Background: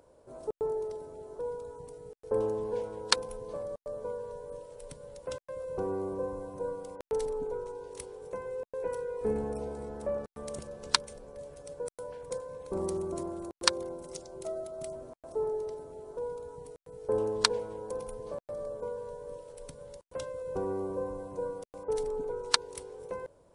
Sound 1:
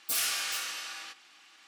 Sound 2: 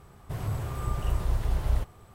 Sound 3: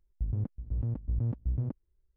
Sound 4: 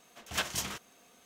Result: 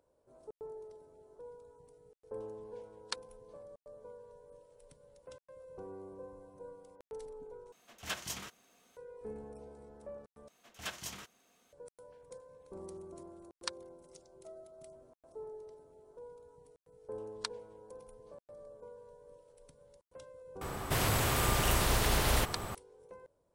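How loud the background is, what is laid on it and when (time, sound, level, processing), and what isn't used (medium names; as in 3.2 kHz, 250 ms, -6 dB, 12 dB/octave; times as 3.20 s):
background -14 dB
7.72 s: replace with 4 -6.5 dB
10.48 s: replace with 4 -9 dB
20.61 s: add 2 -2 dB + spectrum-flattening compressor 2:1
not used: 1, 3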